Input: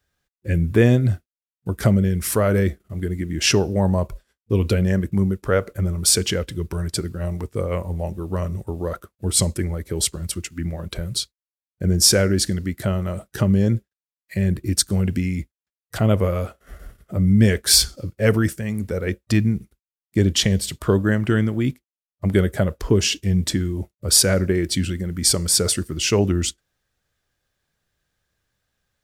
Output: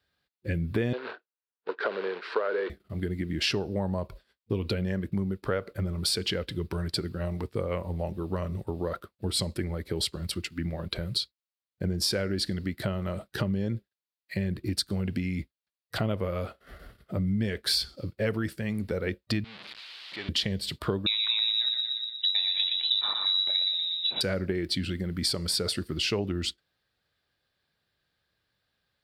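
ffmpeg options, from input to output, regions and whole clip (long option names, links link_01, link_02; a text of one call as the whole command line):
ffmpeg -i in.wav -filter_complex "[0:a]asettb=1/sr,asplit=3[link_01][link_02][link_03];[link_01]atrim=end=0.934[link_04];[link_02]atrim=start=0.93:end=2.7,asetpts=PTS-STARTPTS,afade=type=in:duration=0.004:curve=qsin,afade=type=out:start_time=1.766:duration=0.004:curve=qsin,acrusher=bits=4:mode=log:mix=0:aa=0.000001,highpass=frequency=400:width=0.5412,highpass=frequency=400:width=1.3066,equalizer=frequency=440:width_type=q:width=4:gain=8,equalizer=frequency=680:width_type=q:width=4:gain=-3,equalizer=frequency=980:width_type=q:width=4:gain=4,equalizer=frequency=1500:width_type=q:width=4:gain=6,equalizer=frequency=2100:width_type=q:width=4:gain=-5,equalizer=frequency=3200:width_type=q:width=4:gain=-5,lowpass=frequency=3400:width=0.5412,lowpass=frequency=3400:width=1.3066[link_05];[link_03]atrim=start=2.696[link_06];[link_04][link_05]acrossfade=duration=0.004:curve1=hsin:curve2=qsin[link_07];[link_07][link_06]acrossfade=duration=0.004:curve1=qsin:curve2=hsin,asettb=1/sr,asplit=3[link_08][link_09][link_10];[link_08]atrim=end=19.444[link_11];[link_09]atrim=start=19.44:end=20.29,asetpts=PTS-STARTPTS,afade=type=in:duration=0.004:curve=qsin,afade=type=out:start_time=0.846:duration=0.004:curve=qsin,aeval=exprs='val(0)+0.5*0.0841*sgn(val(0))':channel_layout=same,bandpass=frequency=3300:width_type=q:width=1.3,aemphasis=mode=reproduction:type=50fm[link_12];[link_10]atrim=start=20.286[link_13];[link_11][link_12]acrossfade=duration=0.004:curve1=hsin:curve2=qsin[link_14];[link_14][link_13]acrossfade=duration=0.004:curve1=qsin:curve2=hsin,asettb=1/sr,asplit=3[link_15][link_16][link_17];[link_15]atrim=end=21.064[link_18];[link_16]atrim=start=21.06:end=24.21,asetpts=PTS-STARTPTS,afade=type=in:duration=0.004:curve=qsin,afade=type=out:start_time=3.146:duration=0.004:curve=qsin,asplit=2[link_19][link_20];[link_20]adelay=31,volume=-12dB[link_21];[link_19][link_21]amix=inputs=2:normalize=0,atrim=end_sample=138915,asplit=2[link_22][link_23];[link_23]adelay=119,lowpass=frequency=2700:poles=1,volume=-4.5dB,asplit=2[link_24][link_25];[link_25]adelay=119,lowpass=frequency=2700:poles=1,volume=0.51,asplit=2[link_26][link_27];[link_27]adelay=119,lowpass=frequency=2700:poles=1,volume=0.51,asplit=2[link_28][link_29];[link_29]adelay=119,lowpass=frequency=2700:poles=1,volume=0.51,asplit=2[link_30][link_31];[link_31]adelay=119,lowpass=frequency=2700:poles=1,volume=0.51,asplit=2[link_32][link_33];[link_33]adelay=119,lowpass=frequency=2700:poles=1,volume=0.51,asplit=2[link_34][link_35];[link_35]adelay=119,lowpass=frequency=2700:poles=1,volume=0.51[link_36];[link_22][link_24][link_26][link_28][link_30][link_32][link_34][link_36]amix=inputs=8:normalize=0,atrim=end_sample=138915,lowpass=frequency=3400:width_type=q:width=0.5098,lowpass=frequency=3400:width_type=q:width=0.6013,lowpass=frequency=3400:width_type=q:width=0.9,lowpass=frequency=3400:width_type=q:width=2.563,afreqshift=-4000[link_37];[link_17]atrim=start=24.206[link_38];[link_18][link_37]acrossfade=duration=0.004:curve1=hsin:curve2=qsin[link_39];[link_39][link_38]acrossfade=duration=0.004:curve1=qsin:curve2=hsin,highpass=frequency=110:poles=1,highshelf=frequency=5300:width_type=q:width=3:gain=-6,acompressor=threshold=-24dB:ratio=4,volume=-2dB" out.wav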